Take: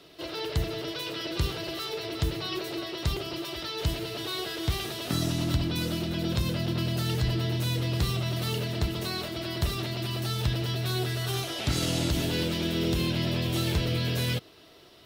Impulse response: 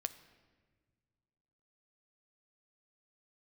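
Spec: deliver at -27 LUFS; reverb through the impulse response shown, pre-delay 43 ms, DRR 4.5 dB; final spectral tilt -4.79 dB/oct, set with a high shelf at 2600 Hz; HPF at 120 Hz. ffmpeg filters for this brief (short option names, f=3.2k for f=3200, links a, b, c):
-filter_complex "[0:a]highpass=120,highshelf=f=2.6k:g=-4.5,asplit=2[a][b];[1:a]atrim=start_sample=2205,adelay=43[c];[b][c]afir=irnorm=-1:irlink=0,volume=-3.5dB[d];[a][d]amix=inputs=2:normalize=0,volume=3.5dB"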